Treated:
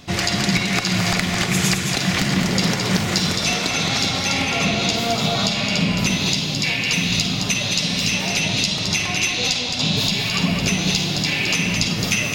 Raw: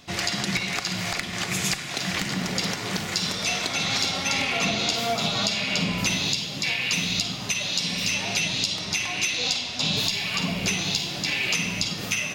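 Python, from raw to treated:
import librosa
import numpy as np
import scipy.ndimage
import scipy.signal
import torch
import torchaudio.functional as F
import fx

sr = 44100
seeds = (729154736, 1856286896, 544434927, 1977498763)

p1 = fx.low_shelf(x, sr, hz=370.0, db=6.5)
p2 = fx.rider(p1, sr, range_db=10, speed_s=0.5)
p3 = p2 + fx.echo_single(p2, sr, ms=216, db=-5.5, dry=0)
y = F.gain(torch.from_numpy(p3), 3.5).numpy()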